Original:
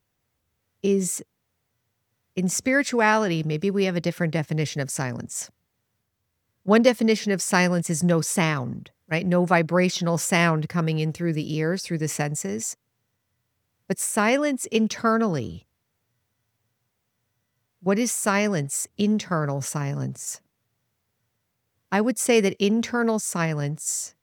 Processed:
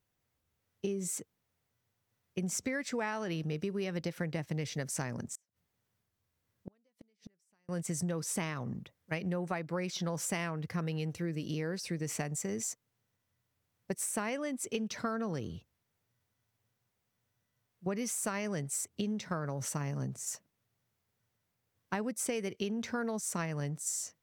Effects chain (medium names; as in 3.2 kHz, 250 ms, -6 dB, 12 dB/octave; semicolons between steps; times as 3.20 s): compression 16:1, threshold -25 dBFS, peak gain reduction 14.5 dB; 5.31–7.69 s: inverted gate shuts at -24 dBFS, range -40 dB; trim -6 dB